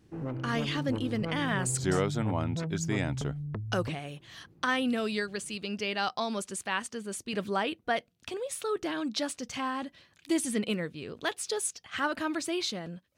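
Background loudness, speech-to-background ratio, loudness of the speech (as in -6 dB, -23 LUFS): -36.0 LUFS, 3.5 dB, -32.5 LUFS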